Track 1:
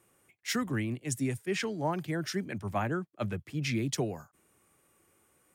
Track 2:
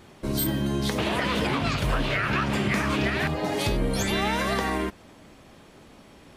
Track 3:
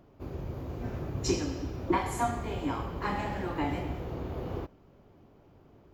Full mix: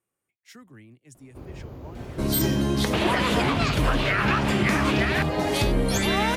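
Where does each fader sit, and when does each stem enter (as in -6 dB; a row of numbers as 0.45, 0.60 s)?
-16.5, +2.5, -1.5 dB; 0.00, 1.95, 1.15 s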